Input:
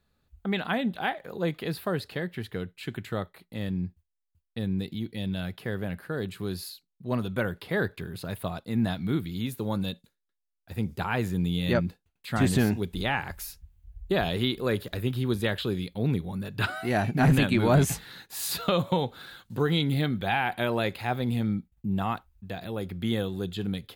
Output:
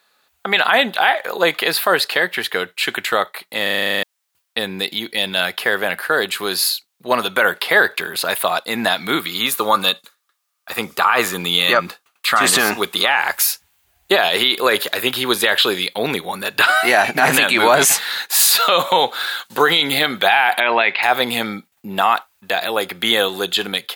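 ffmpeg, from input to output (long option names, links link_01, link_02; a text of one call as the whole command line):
ffmpeg -i in.wav -filter_complex "[0:a]asettb=1/sr,asplit=3[link_01][link_02][link_03];[link_01]atrim=end=9.204[link_04];[link_02]atrim=start=9.2:end=13.08,asetpts=PTS-STARTPTS,afade=type=in:duration=0.004:curve=qsin,afade=type=out:start_time=3.876:duration=0.004:curve=qsin,equalizer=frequency=1200:width=6.5:gain=13[link_05];[link_03]atrim=start=13.076[link_06];[link_04][link_05]acrossfade=duration=0.004:curve1=hsin:curve2=qsin[link_07];[link_07][link_06]acrossfade=duration=0.004:curve1=qsin:curve2=hsin,asettb=1/sr,asplit=3[link_08][link_09][link_10];[link_08]atrim=end=20.604[link_11];[link_09]atrim=start=20.6:end=21.03,asetpts=PTS-STARTPTS,afade=type=in:duration=0.004:curve=qsin,afade=type=out:start_time=0.426:duration=0.004:curve=qsin,highpass=140,equalizer=frequency=320:width_type=q:width=4:gain=-4,equalizer=frequency=530:width_type=q:width=4:gain=-8,equalizer=frequency=1300:width_type=q:width=4:gain=-5,equalizer=frequency=2200:width_type=q:width=4:gain=5,equalizer=frequency=3500:width_type=q:width=4:gain=-4,lowpass=frequency=3600:width=0.5412,lowpass=frequency=3600:width=1.3066[link_12];[link_10]atrim=start=21.026[link_13];[link_11][link_12]acrossfade=duration=0.004:curve1=hsin:curve2=qsin[link_14];[link_14][link_13]acrossfade=duration=0.004:curve1=qsin:curve2=hsin,asplit=11[link_15][link_16][link_17][link_18][link_19][link_20][link_21][link_22][link_23][link_24][link_25];[link_15]atrim=end=3.672[link_26];[link_16]atrim=start=3.628:end=3.672[link_27];[link_17]atrim=start=3.628:end=3.672[link_28];[link_18]atrim=start=3.628:end=3.672[link_29];[link_19]atrim=start=3.628:end=3.672[link_30];[link_20]atrim=start=3.628:end=3.672[link_31];[link_21]atrim=start=3.628:end=3.672[link_32];[link_22]atrim=start=3.628:end=3.672[link_33];[link_23]atrim=start=3.628:end=3.672[link_34];[link_24]atrim=start=3.628:end=3.672[link_35];[link_25]atrim=start=4.028[link_36];[link_26][link_27]acrossfade=duration=0.004:curve1=hsin:curve2=hsin[link_37];[link_37][link_28]acrossfade=duration=0.004:curve1=hsin:curve2=hsin[link_38];[link_38][link_29]acrossfade=duration=0.004:curve1=hsin:curve2=hsin[link_39];[link_39][link_30]acrossfade=duration=0.004:curve1=hsin:curve2=hsin[link_40];[link_40][link_31]acrossfade=duration=0.004:curve1=hsin:curve2=hsin[link_41];[link_41][link_32]acrossfade=duration=0.004:curve1=hsin:curve2=hsin[link_42];[link_42][link_33]acrossfade=duration=0.004:curve1=hsin:curve2=hsin[link_43];[link_43][link_34]acrossfade=duration=0.004:curve1=hsin:curve2=hsin[link_44];[link_44][link_35]acrossfade=duration=0.004:curve1=hsin:curve2=hsin[link_45];[link_45][link_36]acrossfade=duration=0.004:curve1=hsin:curve2=hsin,highpass=780,dynaudnorm=framelen=180:gausssize=5:maxgain=4dB,alimiter=level_in=20.5dB:limit=-1dB:release=50:level=0:latency=1,volume=-2dB" out.wav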